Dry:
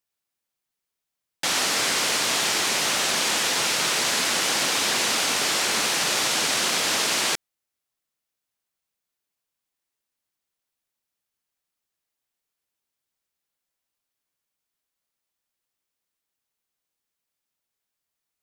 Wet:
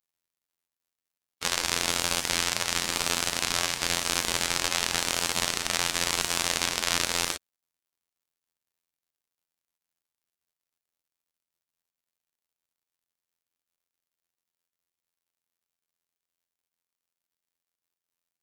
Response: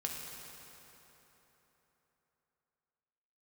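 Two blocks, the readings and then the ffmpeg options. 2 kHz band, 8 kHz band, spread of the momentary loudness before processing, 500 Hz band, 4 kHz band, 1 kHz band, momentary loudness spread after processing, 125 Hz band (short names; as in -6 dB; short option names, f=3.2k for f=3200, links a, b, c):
-5.5 dB, -4.5 dB, 1 LU, -5.5 dB, -5.0 dB, -5.0 dB, 2 LU, +2.0 dB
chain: -af "afftfilt=real='hypot(re,im)*cos(PI*b)':imag='0':win_size=2048:overlap=0.75,aeval=exprs='val(0)*sin(2*PI*1100*n/s+1100*0.8/0.95*sin(2*PI*0.95*n/s))':c=same,volume=1.5dB"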